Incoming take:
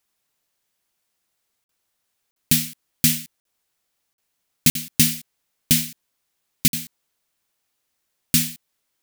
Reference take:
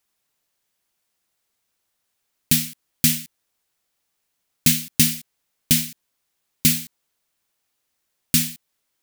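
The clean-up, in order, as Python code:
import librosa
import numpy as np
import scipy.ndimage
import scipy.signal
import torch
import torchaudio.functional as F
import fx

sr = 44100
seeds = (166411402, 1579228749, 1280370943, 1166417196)

y = fx.fix_interpolate(x, sr, at_s=(1.64, 2.31, 3.4, 4.13, 4.7, 6.68), length_ms=52.0)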